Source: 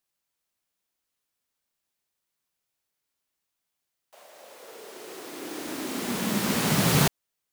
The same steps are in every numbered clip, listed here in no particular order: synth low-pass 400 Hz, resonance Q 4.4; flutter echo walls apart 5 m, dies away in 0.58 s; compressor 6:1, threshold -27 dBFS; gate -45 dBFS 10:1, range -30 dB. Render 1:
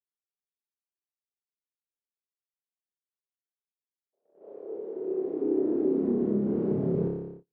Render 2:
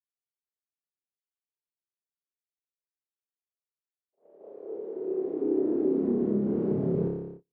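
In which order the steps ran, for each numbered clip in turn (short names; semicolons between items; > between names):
flutter echo > compressor > synth low-pass > gate; flutter echo > compressor > gate > synth low-pass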